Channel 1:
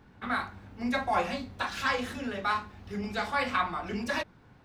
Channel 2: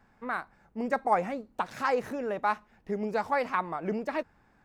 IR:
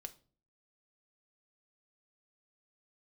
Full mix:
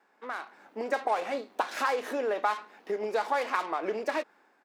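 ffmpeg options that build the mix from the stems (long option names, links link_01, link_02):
-filter_complex "[0:a]highshelf=frequency=9100:gain=-11,aeval=exprs='(tanh(56.2*val(0)+0.6)-tanh(0.6))/56.2':channel_layout=same,volume=-11dB[link_01];[1:a]acompressor=threshold=-34dB:ratio=6,adelay=2.2,volume=-1.5dB[link_02];[link_01][link_02]amix=inputs=2:normalize=0,highpass=frequency=320:width=0.5412,highpass=frequency=320:width=1.3066,dynaudnorm=framelen=100:gausssize=9:maxgain=10dB"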